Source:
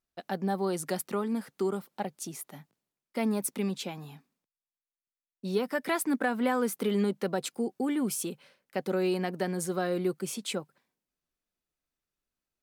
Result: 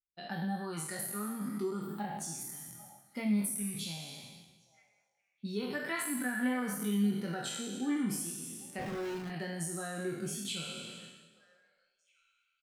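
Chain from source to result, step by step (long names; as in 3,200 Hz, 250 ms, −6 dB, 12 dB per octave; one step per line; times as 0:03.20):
peak hold with a decay on every bin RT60 1.64 s
parametric band 490 Hz −14 dB 2.3 octaves
downward compressor 2.5 to 1, threshold −42 dBFS, peak gain reduction 11.5 dB
0:08.79–0:09.30: comparator with hysteresis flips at −49 dBFS
double-tracking delay 24 ms −5.5 dB
on a send: echo through a band-pass that steps 795 ms, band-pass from 690 Hz, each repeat 1.4 octaves, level −11.5 dB
on the sum: every bin expanded away from the loudest bin 1.5 to 1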